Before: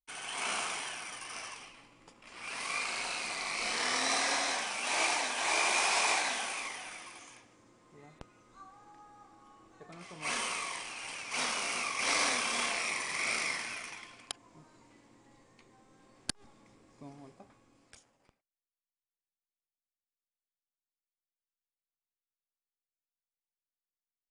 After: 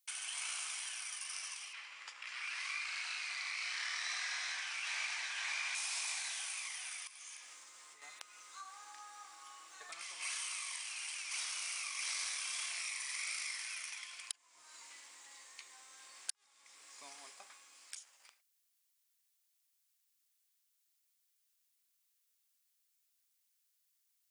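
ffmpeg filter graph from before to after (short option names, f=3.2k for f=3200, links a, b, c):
-filter_complex "[0:a]asettb=1/sr,asplit=3[a][b][c];[a]atrim=end=1.734[d];[b]atrim=start=1.73:end=5.75,asetpts=PTS-STARTPTS,afade=t=in:d=0.004:c=qsin,afade=t=out:st=4.016:d=0.004:c=qsin,highpass=360,lowpass=5.6k,equalizer=f=1.7k:w=1.2:g=7.5[e];[c]atrim=start=5.746[f];[d][e]acrossfade=d=0.004:c1=hsin:c2=qsin[g];[g][f]acrossfade=d=0.004:c1=qsin:c2=hsin,asettb=1/sr,asplit=3[h][i][j];[h]atrim=end=7.074[k];[i]atrim=start=7.07:end=8.02,asetpts=PTS-STARTPTS,afade=t=in:d=0.004:c=qsin,afade=t=out:st=0.946:d=0.004:c=qsin,acompressor=threshold=-58dB:ratio=8:attack=3.2:release=140:knee=1:detection=peak,asplit=2[l][m];[m]adelay=13,volume=-10.5dB[n];[l][n]amix=inputs=2:normalize=0,atrim=end_sample=41895[o];[j]atrim=start=8.016[p];[k][o]acrossfade=d=0.004:c1=hsin:c2=qsin[q];[q][p]acrossfade=d=0.004:c1=qsin:c2=hsin,highpass=1.4k,highshelf=f=3.7k:g=10.5,acompressor=threshold=-55dB:ratio=3,volume=8.5dB"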